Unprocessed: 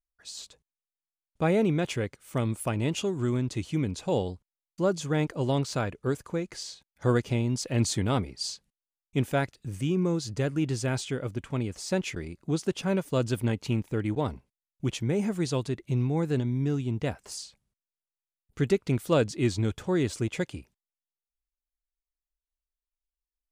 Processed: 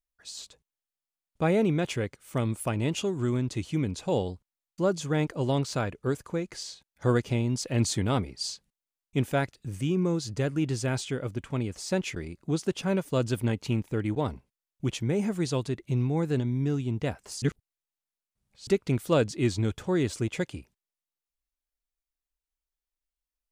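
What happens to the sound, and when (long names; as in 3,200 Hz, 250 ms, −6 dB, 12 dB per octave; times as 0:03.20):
0:17.42–0:18.67: reverse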